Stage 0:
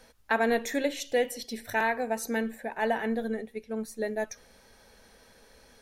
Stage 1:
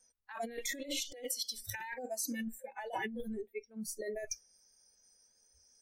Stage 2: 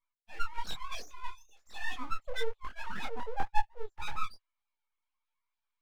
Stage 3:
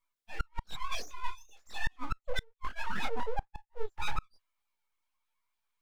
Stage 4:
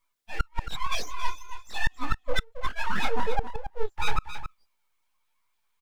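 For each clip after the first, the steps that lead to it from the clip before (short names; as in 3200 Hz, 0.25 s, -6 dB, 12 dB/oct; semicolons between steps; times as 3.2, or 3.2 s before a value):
spectral noise reduction 29 dB; negative-ratio compressor -38 dBFS, ratio -1; gain -2 dB
sine-wave speech; full-wave rectifier; detuned doubles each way 38 cents; gain +10.5 dB
flipped gate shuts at -22 dBFS, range -34 dB; gain +4 dB
echo 0.273 s -10.5 dB; gain +7 dB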